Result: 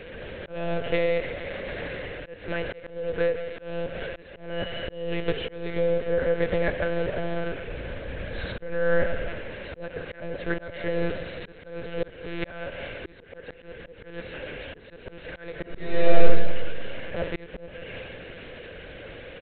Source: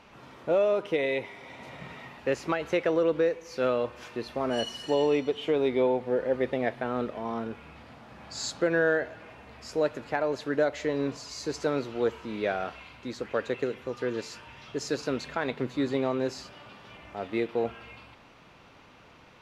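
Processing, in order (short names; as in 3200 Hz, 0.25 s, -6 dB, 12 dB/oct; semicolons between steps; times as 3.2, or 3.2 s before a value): per-bin compression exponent 0.6; speakerphone echo 0.37 s, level -18 dB; FFT band-reject 700–1400 Hz; hard clip -14 dBFS, distortion -34 dB; dynamic EQ 1100 Hz, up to +4 dB, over -40 dBFS, Q 0.87; monotone LPC vocoder at 8 kHz 170 Hz; 7.68–9.29 low shelf 110 Hz +11.5 dB; 15.57–16.21 reverb throw, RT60 0.85 s, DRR -5 dB; feedback echo 0.172 s, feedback 51%, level -15 dB; auto swell 0.429 s; gain -1 dB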